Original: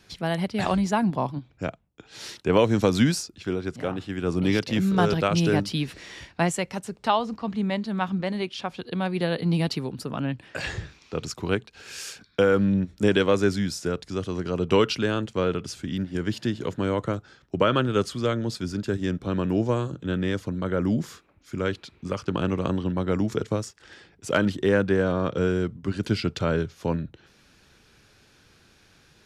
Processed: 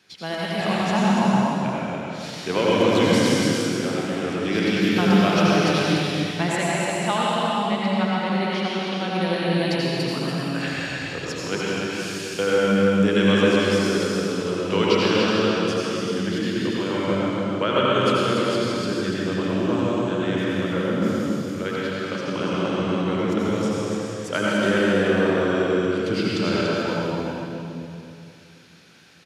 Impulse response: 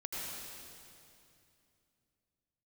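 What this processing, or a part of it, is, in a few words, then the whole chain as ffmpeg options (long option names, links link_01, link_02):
stadium PA: -filter_complex "[0:a]highpass=150,equalizer=frequency=2800:width_type=o:width=2.2:gain=4.5,aecho=1:1:236.2|288.6:0.282|0.562[link_01];[1:a]atrim=start_sample=2205[link_02];[link_01][link_02]afir=irnorm=-1:irlink=0"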